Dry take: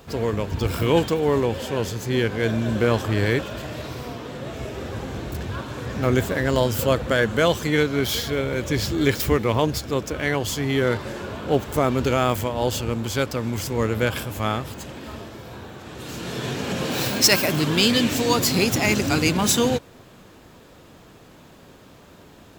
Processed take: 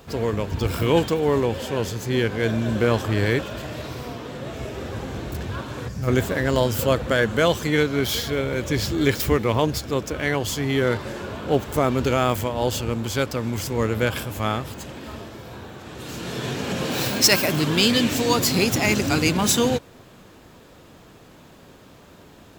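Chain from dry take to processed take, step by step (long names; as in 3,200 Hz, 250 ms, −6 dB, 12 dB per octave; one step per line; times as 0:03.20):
gain on a spectral selection 0:05.88–0:06.08, 210–4,400 Hz −11 dB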